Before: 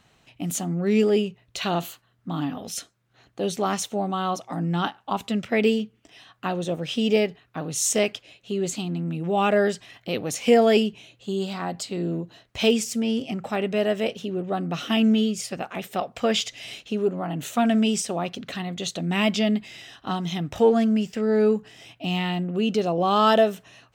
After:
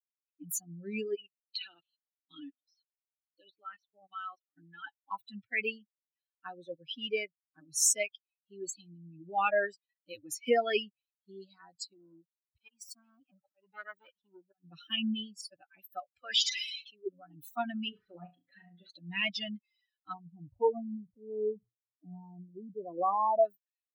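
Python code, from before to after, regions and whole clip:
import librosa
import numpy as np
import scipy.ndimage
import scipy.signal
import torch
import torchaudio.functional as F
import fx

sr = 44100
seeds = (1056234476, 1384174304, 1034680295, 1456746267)

y = fx.chain(x, sr, fx.weighting(curve='D'),
    fx.env_lowpass_down(base_hz=2500.0, full_db=-22.0),
    fx.level_steps(step_db=15), at=(1.15, 4.87))
y = fx.chain(y, sr, fx.law_mismatch(coded='A'),
    fx.auto_swell(attack_ms=204.0),
    fx.transformer_sat(knee_hz=1300.0), at=(11.93, 14.64))
y = fx.chain(y, sr, fx.highpass(hz=120.0, slope=12),
    fx.low_shelf(hz=270.0, db=-10.5),
    fx.sustainer(db_per_s=21.0), at=(16.21, 17.07))
y = fx.chain(y, sr, fx.cvsd(bps=32000),
    fx.lowpass(hz=2700.0, slope=12),
    fx.room_flutter(wall_m=5.9, rt60_s=0.58), at=(17.89, 18.9))
y = fx.chain(y, sr, fx.brickwall_lowpass(high_hz=1200.0),
    fx.sustainer(db_per_s=140.0), at=(20.13, 23.45))
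y = fx.bin_expand(y, sr, power=3.0)
y = fx.highpass(y, sr, hz=1100.0, slope=6)
y = F.gain(torch.from_numpy(y), 2.5).numpy()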